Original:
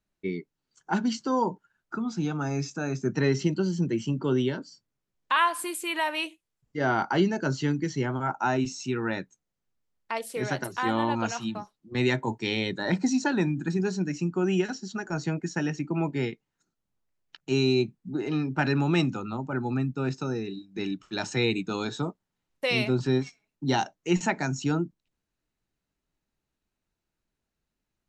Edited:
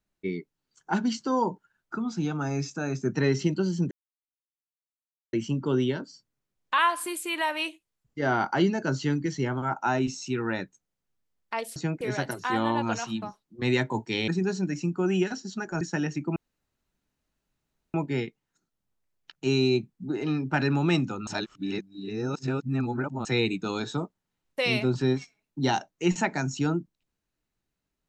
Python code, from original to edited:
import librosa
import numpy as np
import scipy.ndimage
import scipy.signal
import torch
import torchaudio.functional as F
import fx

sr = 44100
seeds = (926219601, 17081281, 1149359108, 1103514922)

y = fx.edit(x, sr, fx.insert_silence(at_s=3.91, length_s=1.42),
    fx.cut(start_s=12.61, length_s=1.05),
    fx.move(start_s=15.19, length_s=0.25, to_s=10.34),
    fx.insert_room_tone(at_s=15.99, length_s=1.58),
    fx.reverse_span(start_s=19.32, length_s=1.98), tone=tone)